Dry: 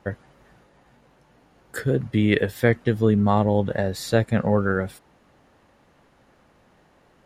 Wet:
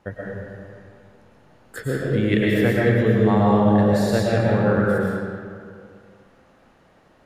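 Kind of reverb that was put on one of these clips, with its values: digital reverb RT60 2.2 s, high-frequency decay 0.65×, pre-delay 80 ms, DRR -5 dB; gain -3.5 dB

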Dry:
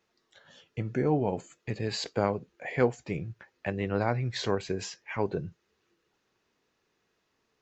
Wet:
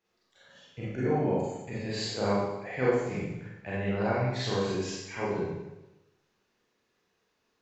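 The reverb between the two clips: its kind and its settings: Schroeder reverb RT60 1 s, combs from 31 ms, DRR -8.5 dB; gain -8.5 dB

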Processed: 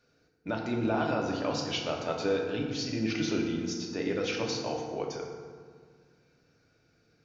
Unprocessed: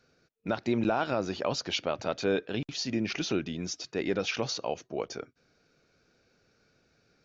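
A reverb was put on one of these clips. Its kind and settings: FDN reverb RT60 1.8 s, low-frequency decay 1.5×, high-frequency decay 0.55×, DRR -0.5 dB; gain -4 dB

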